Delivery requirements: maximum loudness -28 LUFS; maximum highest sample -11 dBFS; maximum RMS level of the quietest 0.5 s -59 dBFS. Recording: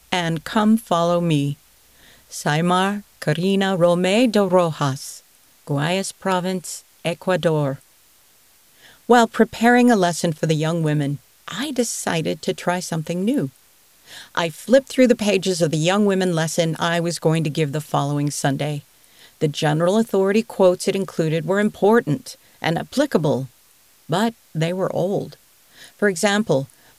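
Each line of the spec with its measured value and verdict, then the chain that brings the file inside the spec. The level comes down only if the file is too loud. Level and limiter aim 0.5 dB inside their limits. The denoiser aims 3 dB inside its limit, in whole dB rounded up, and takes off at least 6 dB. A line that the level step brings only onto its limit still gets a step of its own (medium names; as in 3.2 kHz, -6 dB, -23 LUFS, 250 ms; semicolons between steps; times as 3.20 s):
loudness -20.0 LUFS: fail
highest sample -1.5 dBFS: fail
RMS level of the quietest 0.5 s -54 dBFS: fail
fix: trim -8.5 dB; peak limiter -11.5 dBFS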